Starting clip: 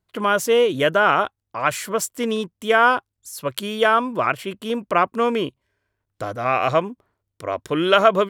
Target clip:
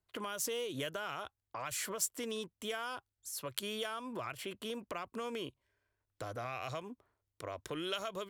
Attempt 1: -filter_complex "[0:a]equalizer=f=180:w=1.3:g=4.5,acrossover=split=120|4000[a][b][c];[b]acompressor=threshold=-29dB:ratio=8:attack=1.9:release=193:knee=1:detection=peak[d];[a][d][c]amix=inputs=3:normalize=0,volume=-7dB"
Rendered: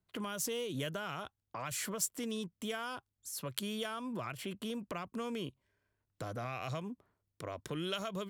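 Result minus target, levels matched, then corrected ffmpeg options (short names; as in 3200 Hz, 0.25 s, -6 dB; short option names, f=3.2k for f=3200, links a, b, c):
250 Hz band +4.5 dB
-filter_complex "[0:a]equalizer=f=180:w=1.3:g=-6.5,acrossover=split=120|4000[a][b][c];[b]acompressor=threshold=-29dB:ratio=8:attack=1.9:release=193:knee=1:detection=peak[d];[a][d][c]amix=inputs=3:normalize=0,volume=-7dB"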